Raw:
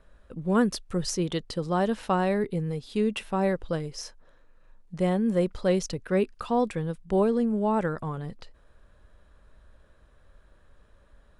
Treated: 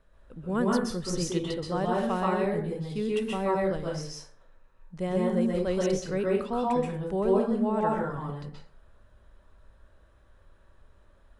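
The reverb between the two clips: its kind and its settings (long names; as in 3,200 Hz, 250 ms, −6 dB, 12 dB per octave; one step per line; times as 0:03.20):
dense smooth reverb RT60 0.51 s, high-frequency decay 0.6×, pre-delay 115 ms, DRR −3.5 dB
level −6 dB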